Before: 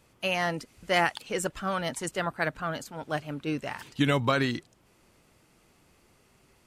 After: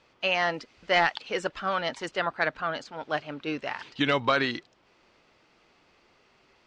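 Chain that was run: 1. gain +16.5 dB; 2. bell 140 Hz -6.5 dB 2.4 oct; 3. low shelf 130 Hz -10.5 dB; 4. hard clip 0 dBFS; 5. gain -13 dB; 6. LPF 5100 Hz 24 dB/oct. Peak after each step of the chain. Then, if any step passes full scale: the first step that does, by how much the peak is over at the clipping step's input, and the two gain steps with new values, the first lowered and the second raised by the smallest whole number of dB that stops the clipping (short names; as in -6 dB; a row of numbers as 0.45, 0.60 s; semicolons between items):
+5.5, +6.5, +7.0, 0.0, -13.0, -11.5 dBFS; step 1, 7.0 dB; step 1 +9.5 dB, step 5 -6 dB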